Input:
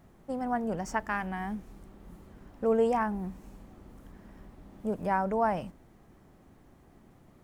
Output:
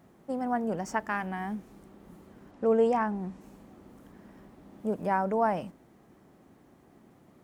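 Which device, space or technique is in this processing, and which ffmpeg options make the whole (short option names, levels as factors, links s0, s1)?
filter by subtraction: -filter_complex "[0:a]asplit=2[s0][s1];[s1]lowpass=260,volume=-1[s2];[s0][s2]amix=inputs=2:normalize=0,asettb=1/sr,asplit=3[s3][s4][s5];[s3]atrim=end=2.514[s6];[s4]atrim=start=2.51:end=3.41,asetpts=PTS-STARTPTS,afade=t=in:d=0.004:c=qsin,afade=t=out:st=0.896:d=0.004:c=qsin,lowpass=8200[s7];[s5]atrim=start=3.406[s8];[s6][s7]acrossfade=d=0.004:c1=hsin:c2=qsin[s9];[s9][s8]acrossfade=d=0.004:c1=qsin:c2=hsin"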